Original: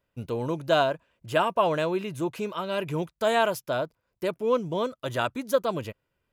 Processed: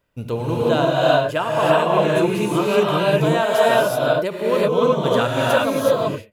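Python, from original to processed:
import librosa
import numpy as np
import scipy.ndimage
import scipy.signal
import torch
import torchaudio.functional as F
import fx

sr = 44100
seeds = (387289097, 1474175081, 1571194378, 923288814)

y = fx.rider(x, sr, range_db=4, speed_s=0.5)
y = fx.rev_gated(y, sr, seeds[0], gate_ms=400, shape='rising', drr_db=-6.0)
y = fx.end_taper(y, sr, db_per_s=210.0)
y = F.gain(torch.from_numpy(y), 2.5).numpy()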